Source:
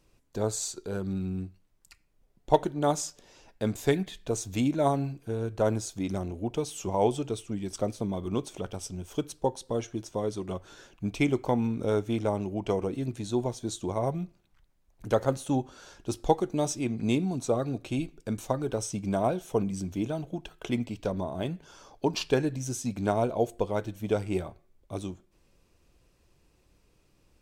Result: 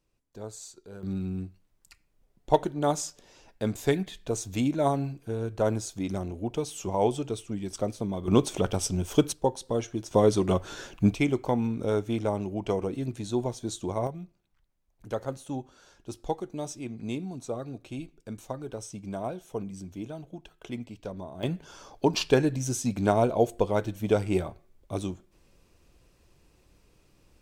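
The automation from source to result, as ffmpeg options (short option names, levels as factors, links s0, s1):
-af "asetnsamples=n=441:p=0,asendcmd='1.03 volume volume 0dB;8.28 volume volume 9dB;9.33 volume volume 2dB;10.11 volume volume 10dB;11.14 volume volume 0dB;14.07 volume volume -7dB;21.43 volume volume 3.5dB',volume=0.282"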